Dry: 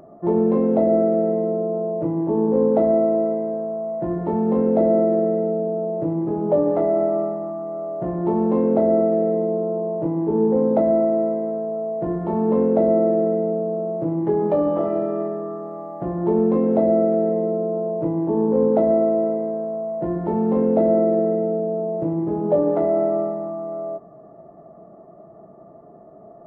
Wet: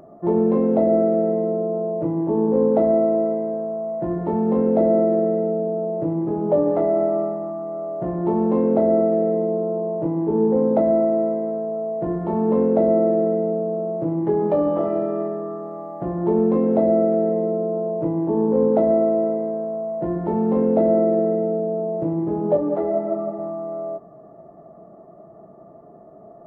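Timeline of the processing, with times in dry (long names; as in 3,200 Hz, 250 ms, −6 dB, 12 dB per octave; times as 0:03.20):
0:22.57–0:23.39: string-ensemble chorus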